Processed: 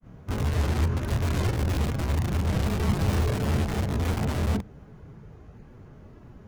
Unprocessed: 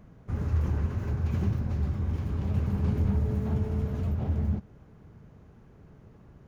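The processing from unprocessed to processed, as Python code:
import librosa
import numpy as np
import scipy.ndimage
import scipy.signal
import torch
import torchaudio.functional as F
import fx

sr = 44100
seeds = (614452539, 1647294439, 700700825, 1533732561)

p1 = (np.mod(10.0 ** (25.0 / 20.0) * x + 1.0, 2.0) - 1.0) / 10.0 ** (25.0 / 20.0)
p2 = x + F.gain(torch.from_numpy(p1), -3.5).numpy()
p3 = fx.granulator(p2, sr, seeds[0], grain_ms=157.0, per_s=20.0, spray_ms=21.0, spread_st=0)
y = F.gain(torch.from_numpy(p3), 4.5).numpy()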